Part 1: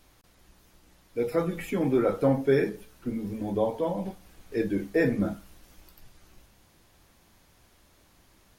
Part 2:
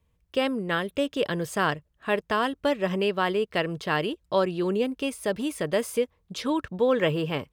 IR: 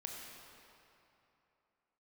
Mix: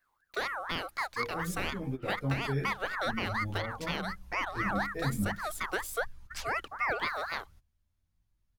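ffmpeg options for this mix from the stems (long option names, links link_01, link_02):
-filter_complex "[0:a]asubboost=boost=9:cutoff=130,asplit=2[link_01][link_02];[link_02]adelay=11.7,afreqshift=0.41[link_03];[link_01][link_03]amix=inputs=2:normalize=1,volume=-7.5dB[link_04];[1:a]highshelf=frequency=8300:gain=9.5,aeval=exprs='val(0)*sin(2*PI*1300*n/s+1300*0.3/4.1*sin(2*PI*4.1*n/s))':channel_layout=same,volume=-4.5dB,asplit=2[link_05][link_06];[link_06]apad=whole_len=379247[link_07];[link_04][link_07]sidechaingate=range=-18dB:threshold=-60dB:ratio=16:detection=peak[link_08];[link_08][link_05]amix=inputs=2:normalize=0,alimiter=limit=-20.5dB:level=0:latency=1:release=256"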